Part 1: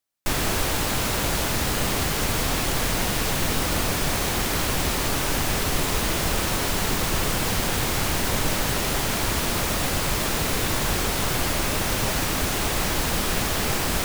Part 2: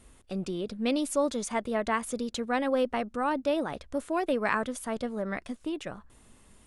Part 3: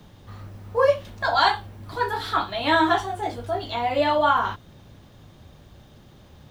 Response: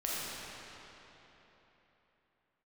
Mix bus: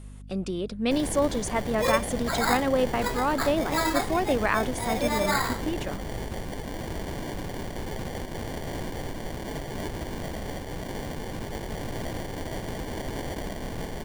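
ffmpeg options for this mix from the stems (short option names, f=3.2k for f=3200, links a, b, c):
-filter_complex "[0:a]acrusher=samples=34:mix=1:aa=0.000001,alimiter=limit=-19dB:level=0:latency=1:release=329,adelay=650,volume=-6dB[a];[1:a]aeval=exprs='val(0)+0.00631*(sin(2*PI*50*n/s)+sin(2*PI*2*50*n/s)/2+sin(2*PI*3*50*n/s)/3+sin(2*PI*4*50*n/s)/4+sin(2*PI*5*50*n/s)/5)':c=same,volume=2.5dB[b];[2:a]lowpass=2.8k,acrusher=samples=15:mix=1:aa=0.000001,adelay=1050,volume=-7dB[c];[a][b][c]amix=inputs=3:normalize=0"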